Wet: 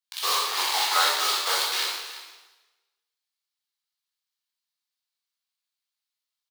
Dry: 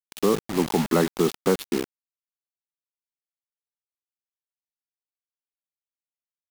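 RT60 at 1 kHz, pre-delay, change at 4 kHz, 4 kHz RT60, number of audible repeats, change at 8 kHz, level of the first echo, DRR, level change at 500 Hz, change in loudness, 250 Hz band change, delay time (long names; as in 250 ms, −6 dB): 1.3 s, 7 ms, +14.0 dB, 1.2 s, 1, +8.0 dB, −15.5 dB, −5.0 dB, −14.0 dB, +1.0 dB, −28.5 dB, 340 ms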